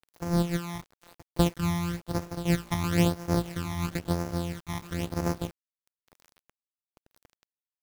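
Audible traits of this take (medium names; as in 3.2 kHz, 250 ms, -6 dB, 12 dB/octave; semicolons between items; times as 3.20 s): a buzz of ramps at a fixed pitch in blocks of 256 samples; phasing stages 12, 1 Hz, lowest notch 470–3400 Hz; a quantiser's noise floor 8-bit, dither none; random flutter of the level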